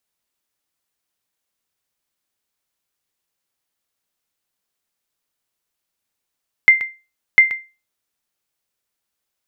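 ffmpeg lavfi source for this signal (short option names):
-f lavfi -i "aevalsrc='0.841*(sin(2*PI*2090*mod(t,0.7))*exp(-6.91*mod(t,0.7)/0.29)+0.188*sin(2*PI*2090*max(mod(t,0.7)-0.13,0))*exp(-6.91*max(mod(t,0.7)-0.13,0)/0.29))':d=1.4:s=44100"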